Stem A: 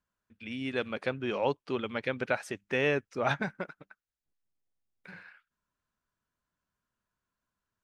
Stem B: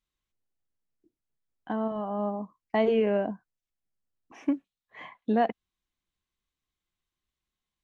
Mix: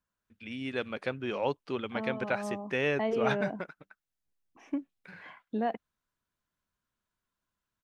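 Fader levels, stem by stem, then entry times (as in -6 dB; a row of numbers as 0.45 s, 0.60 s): -1.5 dB, -6.5 dB; 0.00 s, 0.25 s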